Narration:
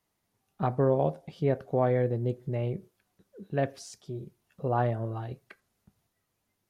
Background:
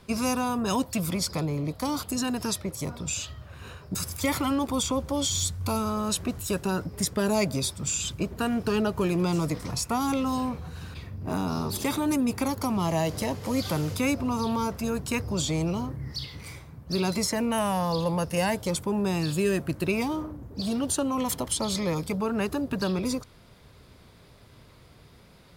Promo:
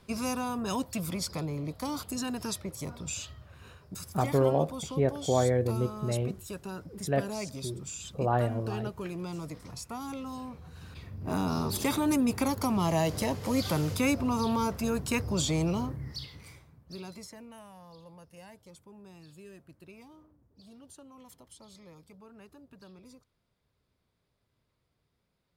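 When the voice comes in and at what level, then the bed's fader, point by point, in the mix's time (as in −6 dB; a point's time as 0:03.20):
3.55 s, 0.0 dB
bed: 0:03.21 −5.5 dB
0:04.16 −12 dB
0:10.48 −12 dB
0:11.40 −1 dB
0:15.85 −1 dB
0:17.70 −25 dB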